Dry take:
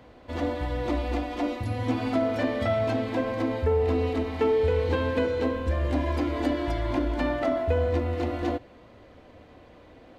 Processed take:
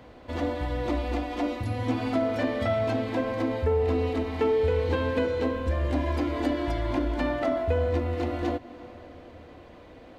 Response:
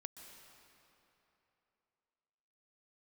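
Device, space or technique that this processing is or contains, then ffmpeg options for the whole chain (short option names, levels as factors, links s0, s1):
ducked reverb: -filter_complex "[0:a]asplit=3[s0][s1][s2];[1:a]atrim=start_sample=2205[s3];[s1][s3]afir=irnorm=-1:irlink=0[s4];[s2]apad=whole_len=449362[s5];[s4][s5]sidechaincompress=threshold=0.0158:ratio=8:attack=16:release=283,volume=1[s6];[s0][s6]amix=inputs=2:normalize=0,volume=0.841"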